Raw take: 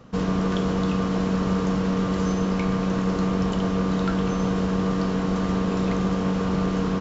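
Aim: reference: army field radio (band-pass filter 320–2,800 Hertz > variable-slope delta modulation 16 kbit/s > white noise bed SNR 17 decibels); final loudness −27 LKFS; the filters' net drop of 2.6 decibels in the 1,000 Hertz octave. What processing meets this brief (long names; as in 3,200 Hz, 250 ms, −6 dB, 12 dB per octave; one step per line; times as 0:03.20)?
band-pass filter 320–2,800 Hz
parametric band 1,000 Hz −3 dB
variable-slope delta modulation 16 kbit/s
white noise bed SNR 17 dB
level +3 dB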